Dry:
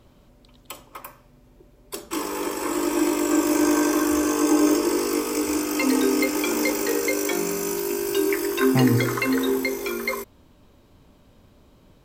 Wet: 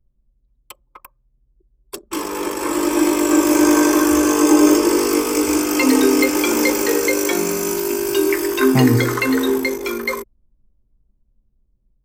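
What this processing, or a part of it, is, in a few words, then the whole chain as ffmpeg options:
voice memo with heavy noise removal: -af "anlmdn=10,dynaudnorm=f=950:g=5:m=3.76"

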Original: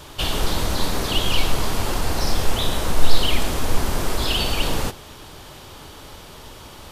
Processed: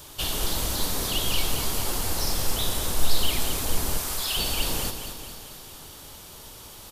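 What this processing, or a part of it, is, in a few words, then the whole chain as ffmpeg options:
exciter from parts: -filter_complex "[0:a]asettb=1/sr,asplit=3[s0][s1][s2];[s0]atrim=end=3.974[s3];[s1]atrim=start=3.97:end=4.37,asetpts=PTS-STARTPTS,afade=t=in:d=0.004:c=qsin,afade=t=out:st=0.396:d=0.004:c=qsin,highpass=780[s4];[s2]atrim=start=4.366[s5];[s3][s4]acrossfade=d=0.004:c1=hsin:c2=qsin[s6];[s6][s5]acrossfade=d=0.004:c1=qsin:c2=hsin,highshelf=f=7000:g=12,aecho=1:1:221|442|663|884|1105|1326|1547:0.355|0.199|0.111|0.0623|0.0349|0.0195|0.0109,asplit=2[s7][s8];[s8]highpass=2800,asoftclip=type=tanh:threshold=0.1,volume=0.422[s9];[s7][s9]amix=inputs=2:normalize=0,volume=0.422"

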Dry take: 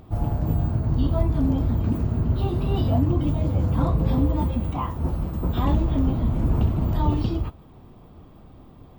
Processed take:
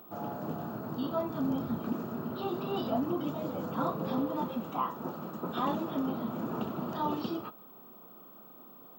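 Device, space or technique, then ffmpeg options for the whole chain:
old television with a line whistle: -filter_complex "[0:a]asettb=1/sr,asplit=3[s0][s1][s2];[s0]atrim=end=1.204[s3];[s1]atrim=start=1.2:end=1.78,asetpts=PTS-STARTPTS,afade=t=in:d=0.004:c=qsin,afade=t=out:st=0.576:d=0.004:c=qsin,asubboost=boost=11.5:cutoff=230[s4];[s2]atrim=start=1.776[s5];[s3][s4]acrossfade=d=0.004:c1=hsin:c2=qsin[s6];[s6][s5]acrossfade=d=0.004:c1=qsin:c2=hsin,highpass=f=210:w=0.5412,highpass=f=210:w=1.3066,equalizer=f=290:t=q:w=4:g=-5,equalizer=f=1300:t=q:w=4:g=8,equalizer=f=2100:t=q:w=4:g=-7,lowpass=f=8400:w=0.5412,lowpass=f=8400:w=1.3066,aeval=exprs='val(0)+0.00398*sin(2*PI*15734*n/s)':c=same,volume=0.668"

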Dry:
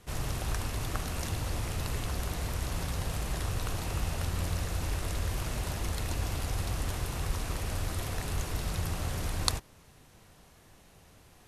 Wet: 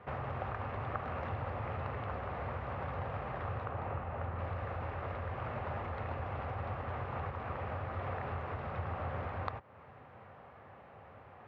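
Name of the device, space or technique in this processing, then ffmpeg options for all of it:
bass amplifier: -filter_complex "[0:a]acompressor=threshold=0.0126:ratio=3,highpass=f=83:w=0.5412,highpass=f=83:w=1.3066,equalizer=f=170:t=q:w=4:g=-7,equalizer=f=310:t=q:w=4:g=-7,equalizer=f=550:t=q:w=4:g=6,equalizer=f=800:t=q:w=4:g=6,equalizer=f=1200:t=q:w=4:g=6,lowpass=f=2200:w=0.5412,lowpass=f=2200:w=1.3066,asettb=1/sr,asplit=3[s0][s1][s2];[s0]atrim=end=3.654[s3];[s1]atrim=start=3.65:end=4.39,asetpts=PTS-STARTPTS,afade=t=in:d=0.004:c=qsin,afade=t=out:st=0.736:d=0.004:c=qsin,lowpass=f=2200:p=1[s4];[s2]atrim=start=4.386[s5];[s3][s4]acrossfade=d=0.004:c1=hsin:c2=qsin[s6];[s6][s5]acrossfade=d=0.004:c1=qsin:c2=hsin,volume=1.58"

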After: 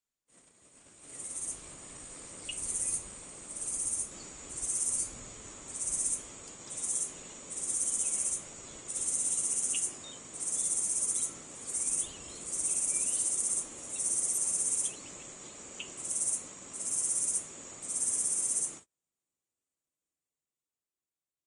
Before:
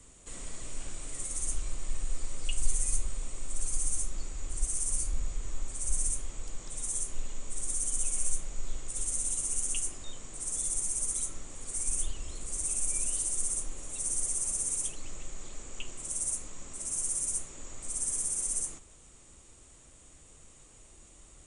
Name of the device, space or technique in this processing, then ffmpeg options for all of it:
video call: -af "highpass=150,dynaudnorm=f=140:g=21:m=2,agate=range=0.0158:threshold=0.00708:ratio=16:detection=peak,volume=0.596" -ar 48000 -c:a libopus -b:a 32k

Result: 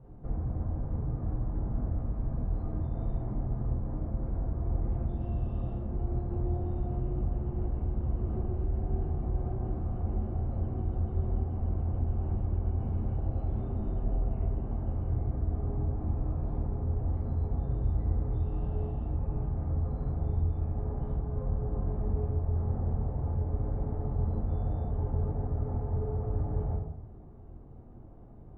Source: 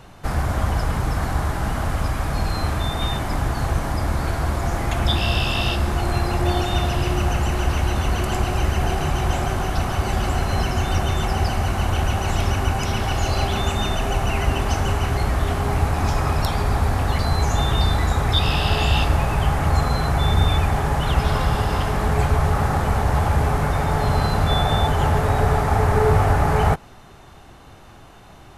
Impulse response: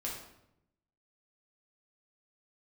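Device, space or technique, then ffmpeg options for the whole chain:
television next door: -filter_complex "[0:a]asettb=1/sr,asplit=3[s0][s1][s2];[s0]atrim=end=21.124[s3];[s1]atrim=start=21.12:end=21.87,asetpts=PTS-STARTPTS,afade=t=in:d=0.004:c=qsin,afade=t=out:st=0.746:d=0.004:c=qsin,equalizer=f=3000:w=1.4:g=-6[s4];[s2]atrim=start=21.866[s5];[s3][s4]acrossfade=d=0.004:c1=hsin:c2=qsin[s6];[s6][s5]acrossfade=d=0.004:c1=qsin:c2=hsin,acompressor=threshold=0.0562:ratio=5,lowpass=430[s7];[1:a]atrim=start_sample=2205[s8];[s7][s8]afir=irnorm=-1:irlink=0,volume=0.531"

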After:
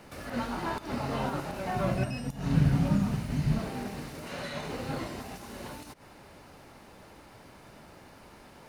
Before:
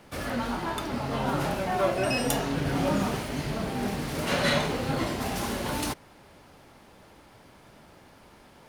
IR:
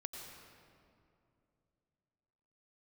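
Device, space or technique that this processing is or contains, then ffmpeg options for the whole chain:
de-esser from a sidechain: -filter_complex "[0:a]bandreject=f=3300:w=14,asplit=2[s0][s1];[s1]highpass=f=6200:w=0.5412,highpass=f=6200:w=1.3066,apad=whole_len=383056[s2];[s0][s2]sidechaincompress=threshold=0.00224:ratio=10:attack=1.8:release=91,asettb=1/sr,asplit=3[s3][s4][s5];[s3]atrim=end=1.764[s6];[s4]atrim=start=1.76:end=3.59,asetpts=PTS-STARTPTS,afade=t=in:d=0.004:c=qsin,afade=t=out:st=1.826:d=0.004:c=qsin,lowshelf=f=260:t=q:w=1.5:g=10.5[s7];[s5]atrim=start=3.586[s8];[s6][s7]acrossfade=d=0.004:c1=hsin:c2=qsin[s9];[s9][s8]acrossfade=d=0.004:c1=qsin:c2=hsin,volume=1.19"

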